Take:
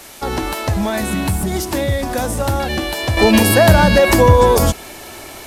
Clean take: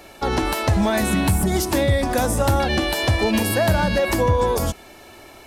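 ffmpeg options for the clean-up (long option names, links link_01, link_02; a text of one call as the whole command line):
ffmpeg -i in.wav -af "adeclick=threshold=4,afwtdn=0.013,asetnsamples=nb_out_samples=441:pad=0,asendcmd='3.17 volume volume -8.5dB',volume=0dB" out.wav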